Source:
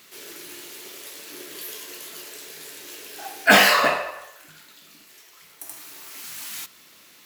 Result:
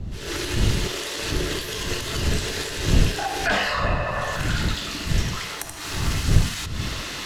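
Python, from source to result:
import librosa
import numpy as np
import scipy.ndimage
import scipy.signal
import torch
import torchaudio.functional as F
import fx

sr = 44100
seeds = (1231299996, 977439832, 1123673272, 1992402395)

y = np.minimum(x, 2.0 * 10.0 ** (-8.5 / 20.0) - x)
y = fx.recorder_agc(y, sr, target_db=-8.0, rise_db_per_s=67.0, max_gain_db=30)
y = fx.dmg_wind(y, sr, seeds[0], corner_hz=110.0, level_db=-18.0)
y = fx.air_absorb(y, sr, metres=72.0)
y = fx.notch(y, sr, hz=2300.0, q=12.0)
y = F.gain(torch.from_numpy(y), -7.0).numpy()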